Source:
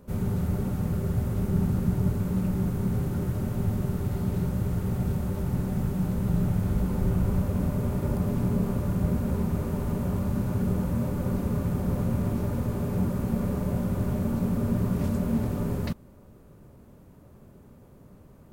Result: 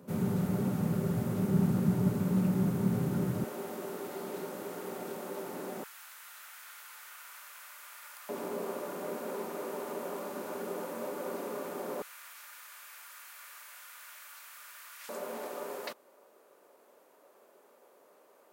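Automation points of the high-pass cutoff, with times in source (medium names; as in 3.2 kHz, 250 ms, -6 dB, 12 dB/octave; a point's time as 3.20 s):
high-pass 24 dB/octave
140 Hz
from 3.44 s 330 Hz
from 5.84 s 1.4 kHz
from 8.29 s 360 Hz
from 12.02 s 1.5 kHz
from 15.09 s 450 Hz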